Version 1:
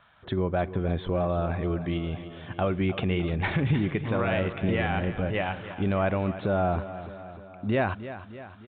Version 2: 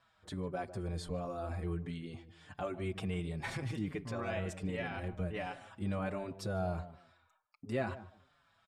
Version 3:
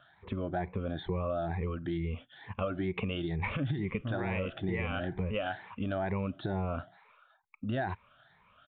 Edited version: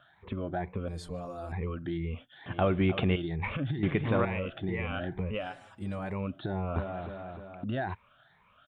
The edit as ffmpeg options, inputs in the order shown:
-filter_complex "[1:a]asplit=2[a][b];[0:a]asplit=3[c][d][e];[2:a]asplit=6[f][g][h][i][j][k];[f]atrim=end=0.882[l];[a]atrim=start=0.878:end=1.522[m];[g]atrim=start=1.518:end=2.462[n];[c]atrim=start=2.458:end=3.162[o];[h]atrim=start=3.158:end=3.832[p];[d]atrim=start=3.828:end=4.252[q];[i]atrim=start=4.248:end=5.57[r];[b]atrim=start=5.33:end=6.22[s];[j]atrim=start=5.98:end=6.762[t];[e]atrim=start=6.758:end=7.642[u];[k]atrim=start=7.638[v];[l][m]acrossfade=d=0.004:c1=hsin:c2=hsin[w];[w][n]acrossfade=d=0.004:c1=hsin:c2=hsin[x];[x][o]acrossfade=d=0.004:c1=hsin:c2=hsin[y];[y][p]acrossfade=d=0.004:c1=hsin:c2=hsin[z];[z][q]acrossfade=d=0.004:c1=hsin:c2=hsin[aa];[aa][r]acrossfade=d=0.004:c1=hsin:c2=hsin[ab];[ab][s]acrossfade=d=0.24:c1=tri:c2=tri[ac];[ac][t]acrossfade=d=0.24:c1=tri:c2=tri[ad];[ad][u]acrossfade=d=0.004:c1=hsin:c2=hsin[ae];[ae][v]acrossfade=d=0.004:c1=hsin:c2=hsin"

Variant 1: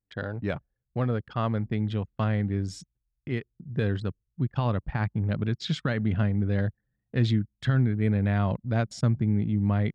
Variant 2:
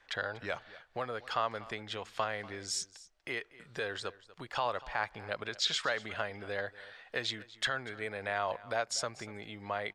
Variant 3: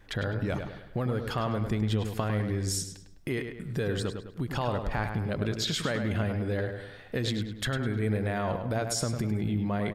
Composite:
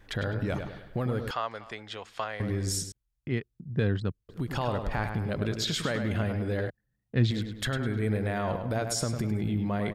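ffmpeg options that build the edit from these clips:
-filter_complex "[0:a]asplit=2[a][b];[2:a]asplit=4[c][d][e][f];[c]atrim=end=1.312[g];[1:a]atrim=start=1.308:end=2.402[h];[d]atrim=start=2.398:end=2.922[i];[a]atrim=start=2.918:end=4.292[j];[e]atrim=start=4.288:end=6.702[k];[b]atrim=start=6.698:end=7.312[l];[f]atrim=start=7.308[m];[g][h]acrossfade=d=0.004:c1=hsin:c2=hsin[n];[n][i]acrossfade=d=0.004:c1=hsin:c2=hsin[o];[o][j]acrossfade=d=0.004:c1=hsin:c2=hsin[p];[p][k]acrossfade=d=0.004:c1=hsin:c2=hsin[q];[q][l]acrossfade=d=0.004:c1=hsin:c2=hsin[r];[r][m]acrossfade=d=0.004:c1=hsin:c2=hsin"

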